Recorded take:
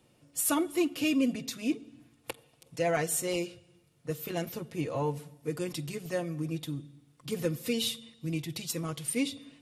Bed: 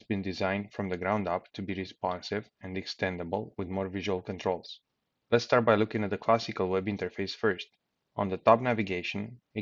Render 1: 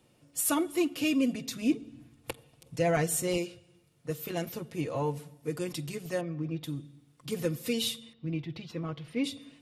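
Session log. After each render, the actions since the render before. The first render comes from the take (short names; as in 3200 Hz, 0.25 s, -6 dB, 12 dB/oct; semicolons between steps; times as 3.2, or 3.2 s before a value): 1.51–3.38 low shelf 200 Hz +10 dB; 6.21–6.64 air absorption 220 m; 8.13–9.24 air absorption 300 m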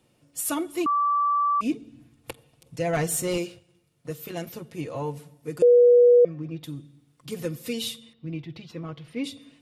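0.86–1.61 bleep 1160 Hz -19.5 dBFS; 2.93–4.09 sample leveller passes 1; 5.62–6.25 bleep 485 Hz -11.5 dBFS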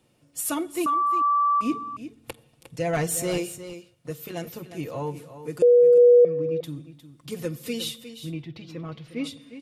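echo 0.357 s -12 dB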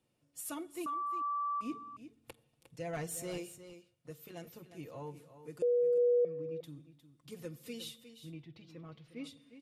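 gain -14 dB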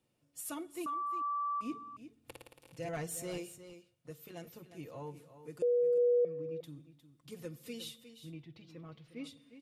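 2.19–2.89 flutter echo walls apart 9.6 m, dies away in 1.3 s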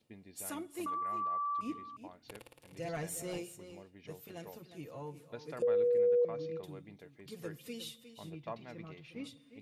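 add bed -22 dB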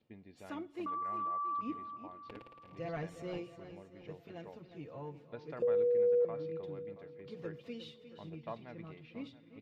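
air absorption 230 m; feedback echo 0.676 s, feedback 39%, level -16.5 dB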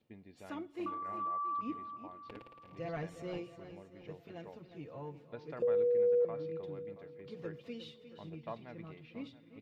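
0.76–1.2 flutter echo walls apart 5.4 m, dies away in 0.27 s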